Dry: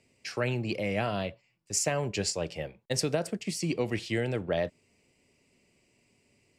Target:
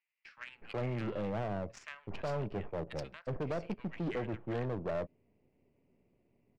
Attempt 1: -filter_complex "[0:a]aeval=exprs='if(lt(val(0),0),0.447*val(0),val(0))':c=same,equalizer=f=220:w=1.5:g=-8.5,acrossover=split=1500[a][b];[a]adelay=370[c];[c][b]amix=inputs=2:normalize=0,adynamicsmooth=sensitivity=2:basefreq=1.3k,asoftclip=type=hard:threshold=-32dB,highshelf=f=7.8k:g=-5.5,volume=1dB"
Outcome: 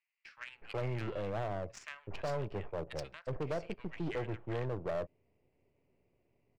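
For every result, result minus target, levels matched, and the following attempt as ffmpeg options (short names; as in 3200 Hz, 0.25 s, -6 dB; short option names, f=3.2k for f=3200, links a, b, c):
8000 Hz band +4.5 dB; 250 Hz band -2.5 dB
-filter_complex "[0:a]aeval=exprs='if(lt(val(0),0),0.447*val(0),val(0))':c=same,equalizer=f=220:w=1.5:g=-8.5,acrossover=split=1500[a][b];[a]adelay=370[c];[c][b]amix=inputs=2:normalize=0,adynamicsmooth=sensitivity=2:basefreq=1.3k,asoftclip=type=hard:threshold=-32dB,highshelf=f=7.8k:g=-14,volume=1dB"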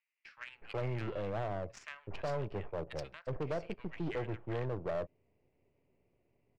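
250 Hz band -2.5 dB
-filter_complex "[0:a]aeval=exprs='if(lt(val(0),0),0.447*val(0),val(0))':c=same,acrossover=split=1500[a][b];[a]adelay=370[c];[c][b]amix=inputs=2:normalize=0,adynamicsmooth=sensitivity=2:basefreq=1.3k,asoftclip=type=hard:threshold=-32dB,highshelf=f=7.8k:g=-14,volume=1dB"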